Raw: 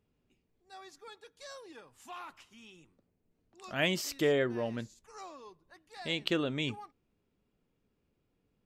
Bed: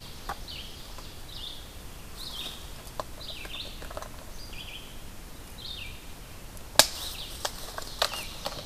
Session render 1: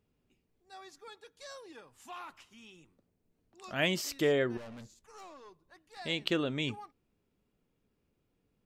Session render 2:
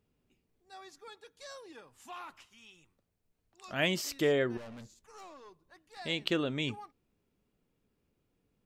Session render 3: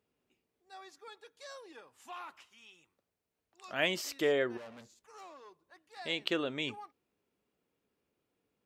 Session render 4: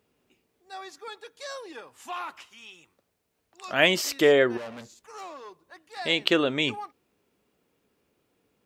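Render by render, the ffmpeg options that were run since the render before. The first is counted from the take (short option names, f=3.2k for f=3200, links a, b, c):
-filter_complex "[0:a]asettb=1/sr,asplit=3[a][b][c];[a]atrim=end=4.574[d];[b]atrim=start=4.57:end=5.97,asetpts=PTS-STARTPTS,afade=t=in:d=0.004:c=qsin,afade=t=out:st=1.396:d=0.004:c=qsin,aeval=exprs='(tanh(178*val(0)+0.35)-tanh(0.35))/178':c=same[e];[c]atrim=start=5.966[f];[d][e]acrossfade=d=0.004:c1=hsin:c2=qsin[g];[g][f]acrossfade=d=0.004:c1=qsin:c2=hsin"
-filter_complex "[0:a]asettb=1/sr,asplit=3[a][b][c];[a]atrim=end=2.464[d];[b]atrim=start=2.46:end=3.7,asetpts=PTS-STARTPTS,afade=t=in:d=0.004:c=qsin,afade=t=out:st=1.236:d=0.004:c=qsin,equalizer=f=270:w=0.62:g=-9.5[e];[c]atrim=start=3.696[f];[d][e]acrossfade=d=0.004:c1=hsin:c2=qsin[g];[g][f]acrossfade=d=0.004:c1=qsin:c2=hsin"
-af "highpass=55,bass=f=250:g=-11,treble=f=4k:g=-3"
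-af "volume=10.5dB"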